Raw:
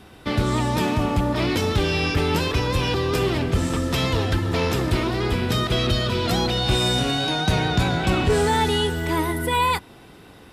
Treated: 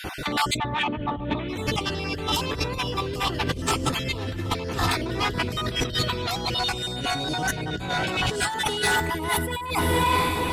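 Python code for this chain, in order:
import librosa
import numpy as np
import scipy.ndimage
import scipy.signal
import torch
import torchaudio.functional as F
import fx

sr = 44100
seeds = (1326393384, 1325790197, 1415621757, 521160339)

p1 = fx.spec_dropout(x, sr, seeds[0], share_pct=31)
p2 = fx.highpass(p1, sr, hz=470.0, slope=6, at=(7.89, 8.88))
p3 = p2 + fx.echo_diffused(p2, sr, ms=475, feedback_pct=40, wet_db=-13, dry=0)
p4 = fx.over_compress(p3, sr, threshold_db=-34.0, ratio=-1.0)
p5 = fx.steep_lowpass(p4, sr, hz=3700.0, slope=72, at=(0.56, 1.48), fade=0.02)
p6 = 10.0 ** (-26.0 / 20.0) * np.tanh(p5 / 10.0 ** (-26.0 / 20.0))
y = p5 + (p6 * 10.0 ** (3.0 / 20.0))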